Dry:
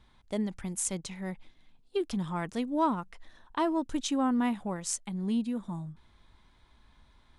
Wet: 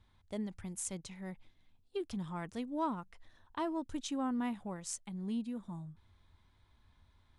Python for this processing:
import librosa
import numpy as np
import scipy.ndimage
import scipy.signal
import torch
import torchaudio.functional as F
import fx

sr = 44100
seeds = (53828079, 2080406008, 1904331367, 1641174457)

y = fx.peak_eq(x, sr, hz=92.0, db=13.0, octaves=0.52)
y = y * librosa.db_to_amplitude(-8.0)